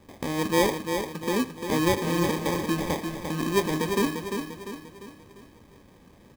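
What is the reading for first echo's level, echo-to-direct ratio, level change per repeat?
−6.5 dB, −5.5 dB, −6.5 dB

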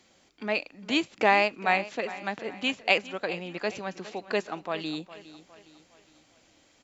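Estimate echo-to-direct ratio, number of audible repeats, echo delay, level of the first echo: −15.0 dB, 3, 410 ms, −16.0 dB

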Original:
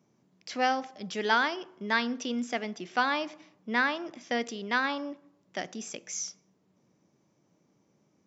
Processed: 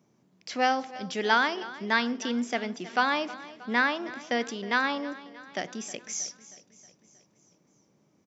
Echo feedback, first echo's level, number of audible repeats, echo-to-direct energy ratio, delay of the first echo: 56%, −17.5 dB, 4, −16.0 dB, 316 ms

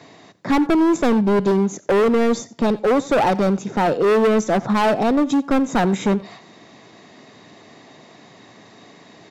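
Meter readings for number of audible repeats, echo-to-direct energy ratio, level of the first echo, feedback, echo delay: 1, −20.5 dB, −20.5 dB, repeats not evenly spaced, 88 ms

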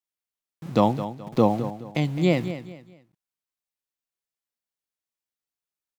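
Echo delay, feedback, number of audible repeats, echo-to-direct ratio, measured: 212 ms, 31%, 3, −11.5 dB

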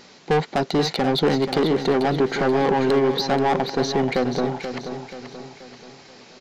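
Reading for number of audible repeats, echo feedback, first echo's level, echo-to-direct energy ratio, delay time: 4, 46%, −9.0 dB, −8.0 dB, 482 ms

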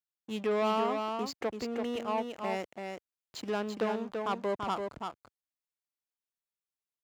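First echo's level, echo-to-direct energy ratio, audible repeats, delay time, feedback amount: −5.0 dB, −5.0 dB, 1, 336 ms, repeats not evenly spaced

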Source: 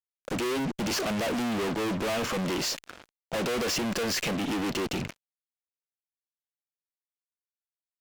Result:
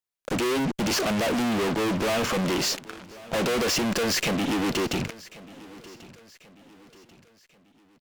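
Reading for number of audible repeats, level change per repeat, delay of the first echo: 3, −7.5 dB, 1,089 ms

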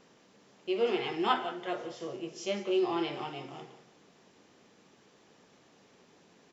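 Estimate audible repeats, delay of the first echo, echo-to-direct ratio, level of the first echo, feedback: 2, 178 ms, −15.5 dB, −16.0 dB, 33%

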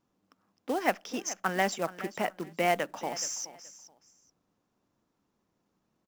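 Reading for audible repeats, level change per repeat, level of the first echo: 2, −13.5 dB, −16.0 dB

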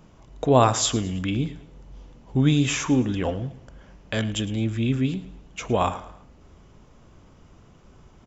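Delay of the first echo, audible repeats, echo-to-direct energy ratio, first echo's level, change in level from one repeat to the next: 109 ms, 3, −16.5 dB, −17.0 dB, −8.0 dB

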